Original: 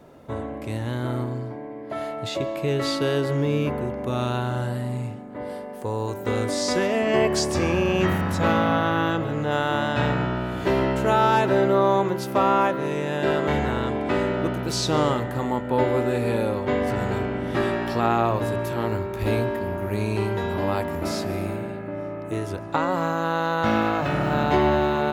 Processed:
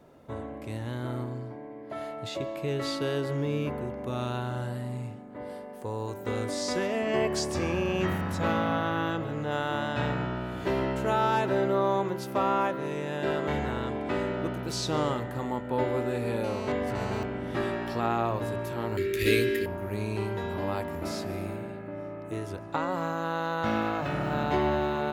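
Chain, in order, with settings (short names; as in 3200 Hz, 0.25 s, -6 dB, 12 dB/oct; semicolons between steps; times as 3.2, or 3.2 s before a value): 16.44–17.23 GSM buzz -32 dBFS; 18.97–19.66 EQ curve 200 Hz 0 dB, 420 Hz +11 dB, 810 Hz -23 dB, 1900 Hz +14 dB; gain -6.5 dB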